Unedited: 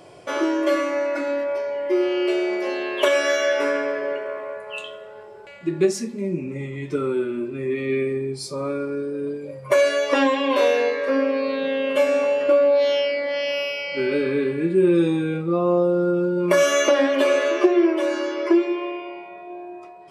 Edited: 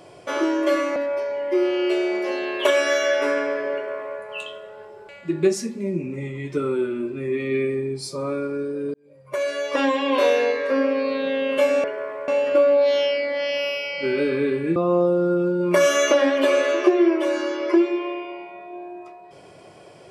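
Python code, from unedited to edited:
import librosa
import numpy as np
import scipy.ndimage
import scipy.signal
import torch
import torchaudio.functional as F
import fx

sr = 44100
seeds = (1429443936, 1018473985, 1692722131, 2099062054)

y = fx.edit(x, sr, fx.cut(start_s=0.96, length_s=0.38),
    fx.duplicate(start_s=4.12, length_s=0.44, to_s=12.22),
    fx.fade_in_span(start_s=9.32, length_s=1.17),
    fx.cut(start_s=14.7, length_s=0.83), tone=tone)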